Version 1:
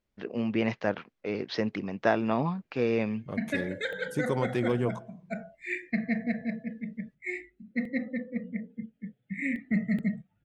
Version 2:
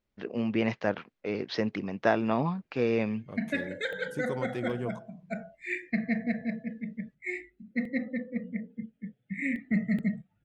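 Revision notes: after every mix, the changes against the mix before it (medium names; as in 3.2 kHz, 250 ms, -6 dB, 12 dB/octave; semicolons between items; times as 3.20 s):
second voice -6.0 dB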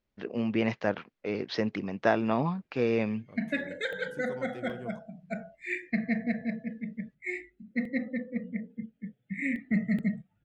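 second voice -7.5 dB; reverb: off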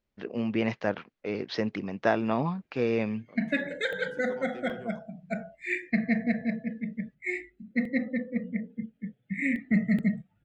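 second voice: add band-pass 250–6400 Hz; background +3.0 dB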